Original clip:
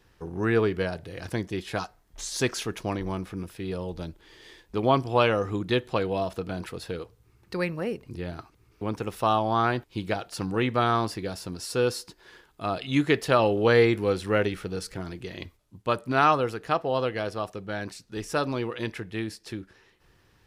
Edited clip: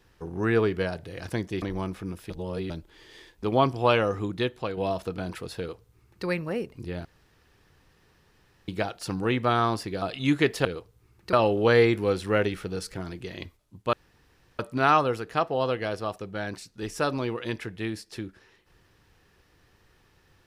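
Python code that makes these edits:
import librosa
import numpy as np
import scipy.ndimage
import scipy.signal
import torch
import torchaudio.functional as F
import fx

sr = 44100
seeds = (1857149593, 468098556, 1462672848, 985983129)

y = fx.edit(x, sr, fx.cut(start_s=1.62, length_s=1.31),
    fx.reverse_span(start_s=3.61, length_s=0.4),
    fx.fade_out_to(start_s=5.42, length_s=0.66, floor_db=-6.5),
    fx.duplicate(start_s=6.89, length_s=0.68, to_s=13.33),
    fx.room_tone_fill(start_s=8.36, length_s=1.63),
    fx.cut(start_s=11.33, length_s=1.37),
    fx.insert_room_tone(at_s=15.93, length_s=0.66), tone=tone)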